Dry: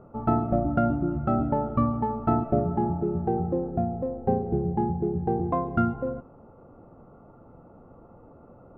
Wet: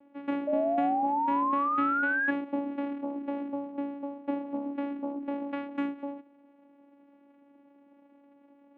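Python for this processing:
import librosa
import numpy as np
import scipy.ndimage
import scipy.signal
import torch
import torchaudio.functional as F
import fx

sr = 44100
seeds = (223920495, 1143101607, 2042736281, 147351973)

y = fx.vocoder(x, sr, bands=4, carrier='saw', carrier_hz=282.0)
y = fx.spec_paint(y, sr, seeds[0], shape='rise', start_s=0.47, length_s=1.84, low_hz=590.0, high_hz=1700.0, level_db=-21.0)
y = F.gain(torch.from_numpy(y), -7.0).numpy()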